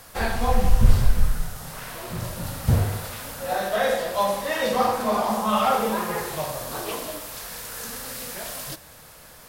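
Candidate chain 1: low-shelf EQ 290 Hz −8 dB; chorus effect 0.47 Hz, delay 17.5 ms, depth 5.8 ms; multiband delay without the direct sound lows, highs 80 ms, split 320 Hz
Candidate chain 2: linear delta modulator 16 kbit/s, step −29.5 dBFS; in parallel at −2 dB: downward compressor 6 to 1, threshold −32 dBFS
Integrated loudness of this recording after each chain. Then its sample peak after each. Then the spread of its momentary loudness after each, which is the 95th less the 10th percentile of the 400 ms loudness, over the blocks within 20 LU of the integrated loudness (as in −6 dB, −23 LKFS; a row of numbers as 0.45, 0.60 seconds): −31.0, −25.0 LKFS; −12.5, −3.0 dBFS; 11, 9 LU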